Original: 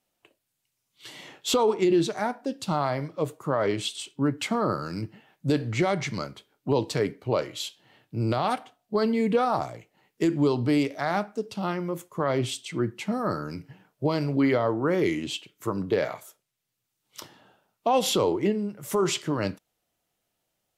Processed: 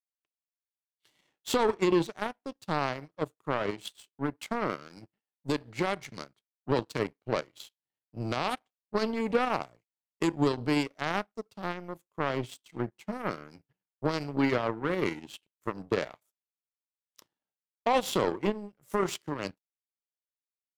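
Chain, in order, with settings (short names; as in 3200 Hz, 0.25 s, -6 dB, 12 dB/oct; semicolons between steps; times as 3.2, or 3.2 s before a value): 3.71–6.09 low shelf 110 Hz -8 dB; power-law curve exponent 2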